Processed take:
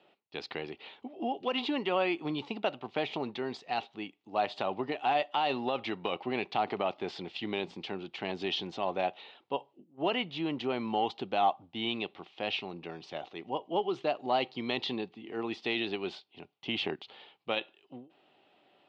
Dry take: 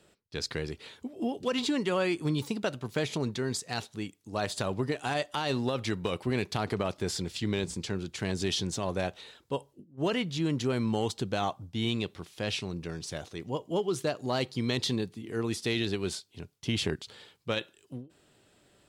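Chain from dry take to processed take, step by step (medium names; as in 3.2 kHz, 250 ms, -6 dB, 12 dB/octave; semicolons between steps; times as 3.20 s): cabinet simulation 300–3500 Hz, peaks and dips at 470 Hz -4 dB, 780 Hz +9 dB, 1.6 kHz -7 dB, 2.8 kHz +4 dB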